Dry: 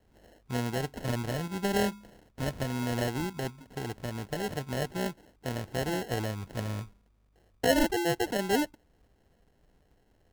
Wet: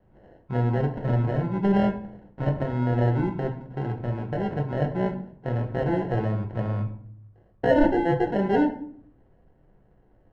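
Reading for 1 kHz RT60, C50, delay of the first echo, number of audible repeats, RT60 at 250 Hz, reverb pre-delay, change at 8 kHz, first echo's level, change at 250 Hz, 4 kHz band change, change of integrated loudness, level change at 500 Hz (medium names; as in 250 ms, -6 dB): 0.55 s, 10.5 dB, no echo, no echo, 0.85 s, 5 ms, under -20 dB, no echo, +7.5 dB, -9.5 dB, +6.0 dB, +6.0 dB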